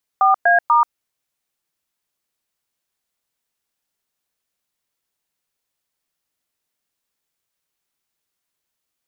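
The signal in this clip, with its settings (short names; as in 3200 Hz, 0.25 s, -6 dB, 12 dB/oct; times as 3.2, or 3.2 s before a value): DTMF "4A*", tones 0.134 s, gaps 0.11 s, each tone -13 dBFS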